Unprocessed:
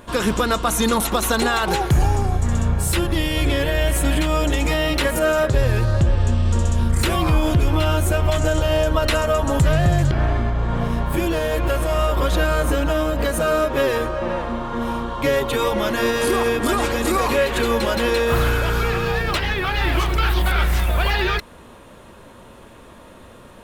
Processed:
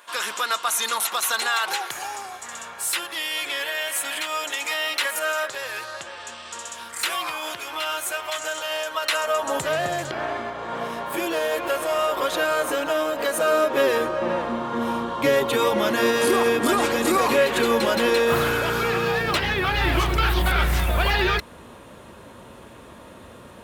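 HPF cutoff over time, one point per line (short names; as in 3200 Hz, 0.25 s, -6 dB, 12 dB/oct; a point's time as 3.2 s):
9.03 s 1100 Hz
9.63 s 450 Hz
13.28 s 450 Hz
14.31 s 170 Hz
19.11 s 170 Hz
19.75 s 61 Hz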